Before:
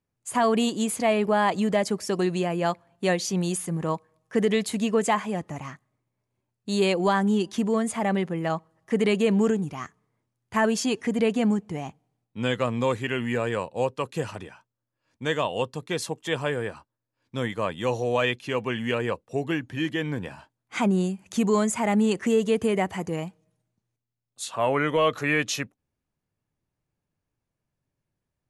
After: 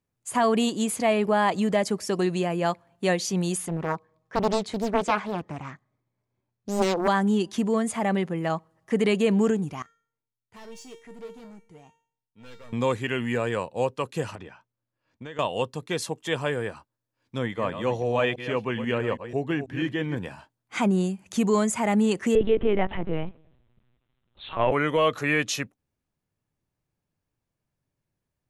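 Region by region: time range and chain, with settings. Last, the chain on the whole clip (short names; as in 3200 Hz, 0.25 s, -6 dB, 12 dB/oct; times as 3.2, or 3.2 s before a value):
3.68–7.08 air absorption 100 m + notch 2800 Hz, Q 10 + Doppler distortion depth 0.93 ms
9.82–12.73 hard clip -25.5 dBFS + resonator 460 Hz, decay 0.49 s, mix 90%
14.35–15.39 compressor, threshold -35 dBFS + air absorption 110 m
17.38–20.17 reverse delay 0.163 s, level -10 dB + high shelf 4600 Hz -11 dB
22.35–24.72 G.711 law mismatch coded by mu + low shelf 190 Hz +5.5 dB + LPC vocoder at 8 kHz pitch kept
whole clip: dry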